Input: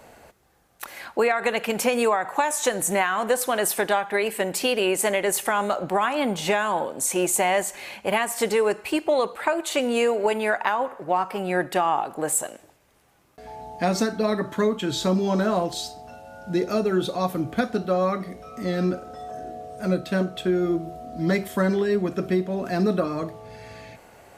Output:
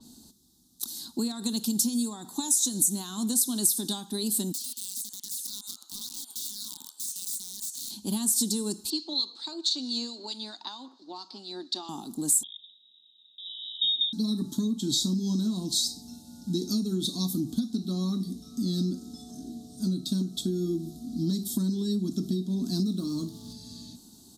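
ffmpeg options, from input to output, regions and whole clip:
-filter_complex "[0:a]asettb=1/sr,asplit=3[s0][s1][s2];[s0]atrim=end=4.524[s3];[s1]atrim=start=4.52:end=7.91,asetpts=PTS-STARTPTS,afade=t=in:d=0.004:c=qsin,afade=t=out:st=3.386:d=0.004:c=qsin,highpass=f=1100:w=0.5412,highpass=f=1100:w=1.3066,acompressor=threshold=0.0141:ratio=16:attack=3.2:release=140:knee=1:detection=peak,aeval=exprs='(mod(59.6*val(0)+1,2)-1)/59.6':c=same[s4];[s2]atrim=start=7.906[s5];[s3][s4]acrossfade=d=0.004:c1=hsin:c2=qsin[s6];[s6][s5]acrossfade=d=0.004:c1=qsin:c2=hsin,asettb=1/sr,asplit=3[s7][s8][s9];[s7]atrim=end=8.904[s10];[s8]atrim=start=8.9:end=11.89,asetpts=PTS-STARTPTS,afade=t=in:d=0.004:c=qsin,afade=t=out:st=2.986:d=0.004:c=qsin,highpass=f=340:w=0.5412,highpass=f=340:w=1.3066,equalizer=f=420:t=q:w=4:g=-9,equalizer=f=2200:t=q:w=4:g=7,equalizer=f=4300:t=q:w=4:g=10,lowpass=f=5400:w=0.5412,lowpass=f=5400:w=1.3066,acrossover=split=1900[s11][s12];[s11]aeval=exprs='val(0)*(1-0.5/2+0.5/2*cos(2*PI*4.5*n/s))':c=same[s13];[s12]aeval=exprs='val(0)*(1-0.5/2-0.5/2*cos(2*PI*4.5*n/s))':c=same[s14];[s13][s14]amix=inputs=2:normalize=0[s15];[s9]atrim=start=11.886[s16];[s10][s15]acrossfade=d=0.004:c1=hsin:c2=qsin[s17];[s17][s16]acrossfade=d=0.004:c1=qsin:c2=hsin,asettb=1/sr,asplit=3[s18][s19][s20];[s18]atrim=end=12.434[s21];[s19]atrim=start=12.43:end=14.13,asetpts=PTS-STARTPTS,afade=t=in:d=0.004:c=qsin,afade=t=out:st=1.696:d=0.004:c=qsin,adynamicsmooth=sensitivity=8:basefreq=3000,asuperstop=centerf=2100:order=20:qfactor=1.3,lowpass=f=3300:t=q:w=0.5098,lowpass=f=3300:t=q:w=0.6013,lowpass=f=3300:t=q:w=0.9,lowpass=f=3300:t=q:w=2.563,afreqshift=-3900[s22];[s20]atrim=start=14.126[s23];[s21][s22]acrossfade=d=0.004:c1=hsin:c2=qsin[s24];[s24][s23]acrossfade=d=0.004:c1=qsin:c2=hsin,asettb=1/sr,asplit=3[s25][s26][s27];[s25]atrim=end=22.864[s28];[s26]atrim=start=22.86:end=23.53,asetpts=PTS-STARTPTS,afade=t=in:d=0.004:c=qsin,afade=t=out:st=0.666:d=0.004:c=qsin,aeval=exprs='sgn(val(0))*max(abs(val(0))-0.00355,0)':c=same,acompressor=mode=upward:threshold=0.0355:ratio=2.5:attack=3.2:release=140:knee=2.83:detection=peak[s29];[s27]atrim=start=23.526[s30];[s28][s29]acrossfade=d=0.004:c1=hsin:c2=qsin[s31];[s31][s30]acrossfade=d=0.004:c1=qsin:c2=hsin,firequalizer=gain_entry='entry(120,0);entry(240,15);entry(530,-22);entry(910,-11);entry(2200,-30);entry(3700,13);entry(13000,10)':delay=0.05:min_phase=1,acompressor=threshold=0.112:ratio=10,adynamicequalizer=threshold=0.0158:dfrequency=5200:dqfactor=0.7:tfrequency=5200:tqfactor=0.7:attack=5:release=100:ratio=0.375:range=2.5:mode=boostabove:tftype=highshelf,volume=0.531"

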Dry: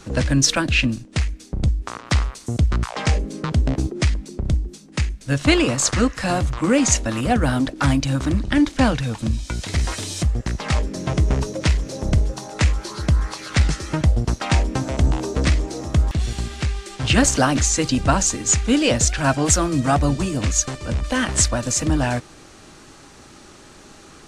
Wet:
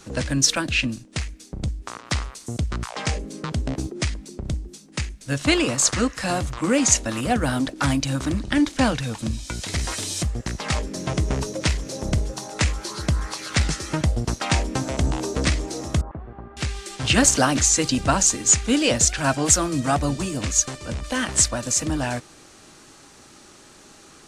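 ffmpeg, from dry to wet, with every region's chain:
-filter_complex "[0:a]asettb=1/sr,asplit=3[s0][s1][s2];[s0]atrim=end=16.014[s3];[s1]atrim=start=16.01:end=16.57,asetpts=PTS-STARTPTS,afade=t=in:d=0.004:c=qsin,afade=t=out:st=0.556:d=0.004:c=qsin,lowpass=f=1200:w=0.5412,lowpass=f=1200:w=1.3066,lowshelf=f=320:g=-11[s4];[s2]atrim=start=16.566[s5];[s3][s4]acrossfade=d=0.004:c1=hsin:c2=qsin[s6];[s6][s5]acrossfade=d=0.004:c1=qsin:c2=hsin,lowshelf=f=98:g=-6.5,dynaudnorm=f=660:g=17:m=3.76,highshelf=f=5100:g=6,volume=0.631"

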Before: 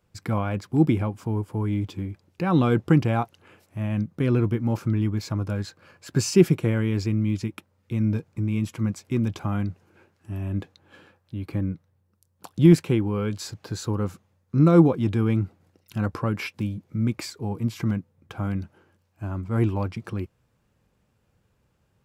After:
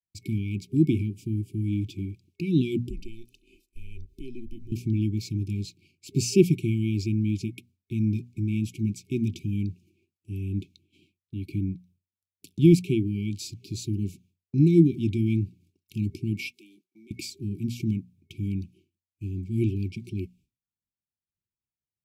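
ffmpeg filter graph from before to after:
-filter_complex "[0:a]asettb=1/sr,asplit=3[s0][s1][s2];[s0]atrim=end=2.894[s3];[s1]atrim=start=2.89:end=4.72,asetpts=PTS-STARTPTS,afade=t=in:d=0.004:c=qsin,afade=t=out:st=1.826:d=0.004:c=qsin,acompressor=threshold=0.02:ratio=3:attack=3.2:release=140:knee=1:detection=peak,aecho=1:1:1.9:0.7,atrim=end_sample=80703,afreqshift=-120[s4];[s2]atrim=start=4.716[s5];[s3][s4]acrossfade=d=0.004:c1=hsin:c2=qsin[s6];[s6][s5]acrossfade=d=0.004:c1=qsin:c2=hsin,asettb=1/sr,asplit=3[s7][s8][s9];[s7]atrim=end=16.514[s10];[s8]atrim=start=16.51:end=17.11,asetpts=PTS-STARTPTS,afade=t=in:d=0.004:c=qsin,afade=t=out:st=0.596:d=0.004:c=qsin,highpass=f=380:w=0.5412,highpass=f=380:w=1.3066,acompressor=threshold=0.00447:ratio=6:attack=3.2:release=140:knee=1:detection=peak[s11];[s9]atrim=start=17.106[s12];[s10][s11]acrossfade=d=0.004:c1=hsin:c2=qsin[s13];[s13][s12]acrossfade=d=0.004:c1=qsin:c2=hsin,bandreject=f=60:t=h:w=6,bandreject=f=120:t=h:w=6,bandreject=f=180:t=h:w=6,bandreject=f=240:t=h:w=6,afftfilt=real='re*(1-between(b*sr/4096,400,2200))':imag='im*(1-between(b*sr/4096,400,2200))':win_size=4096:overlap=0.75,agate=range=0.0224:threshold=0.00316:ratio=3:detection=peak,volume=0.841"

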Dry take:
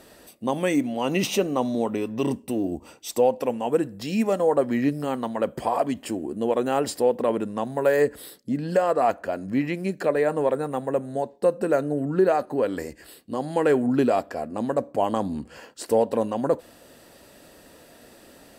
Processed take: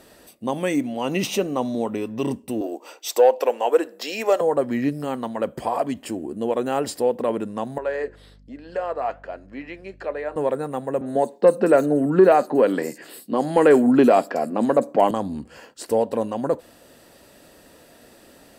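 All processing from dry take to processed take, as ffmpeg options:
-filter_complex "[0:a]asettb=1/sr,asplit=3[s0][s1][s2];[s0]atrim=end=2.614[s3];[s1]atrim=start=2.61:end=4.41,asetpts=PTS-STARTPTS,afade=t=in:d=0.004:c=qsin,afade=t=out:st=1.796:d=0.004:c=qsin,equalizer=f=9400:t=o:w=0.33:g=-10.5,acontrast=63,highpass=f=400:w=0.5412,highpass=f=400:w=1.3066[s4];[s2]atrim=start=4.406[s5];[s3][s4]acrossfade=d=0.004:c1=hsin:c2=qsin[s6];[s6][s5]acrossfade=d=0.004:c1=qsin:c2=hsin,asettb=1/sr,asplit=3[s7][s8][s9];[s7]atrim=end=7.784[s10];[s8]atrim=start=7.78:end=10.36,asetpts=PTS-STARTPTS,afade=t=in:d=0.004:c=qsin,afade=t=out:st=2.576:d=0.004:c=qsin,highpass=420,lowpass=4100,aeval=exprs='val(0)+0.00562*(sin(2*PI*50*n/s)+sin(2*PI*2*50*n/s)/2+sin(2*PI*3*50*n/s)/3+sin(2*PI*4*50*n/s)/4+sin(2*PI*5*50*n/s)/5)':c=same,flanger=delay=3.2:depth=4.1:regen=-80:speed=1.2:shape=sinusoidal[s11];[s9]atrim=start=10.356[s12];[s10][s11]acrossfade=d=0.004:c1=hsin:c2=qsin[s13];[s13][s12]acrossfade=d=0.004:c1=qsin:c2=hsin,asettb=1/sr,asplit=3[s14][s15][s16];[s14]atrim=end=11.014[s17];[s15]atrim=start=11.01:end=15.11,asetpts=PTS-STARTPTS,afade=t=in:d=0.004:c=qsin,afade=t=out:st=4.096:d=0.004:c=qsin,highpass=f=160:w=0.5412,highpass=f=160:w=1.3066,acontrast=74,acrossover=split=4500[s18][s19];[s19]adelay=50[s20];[s18][s20]amix=inputs=2:normalize=0,atrim=end_sample=180810[s21];[s16]atrim=start=15.106[s22];[s17][s21]acrossfade=d=0.004:c1=hsin:c2=qsin[s23];[s23][s22]acrossfade=d=0.004:c1=qsin:c2=hsin"

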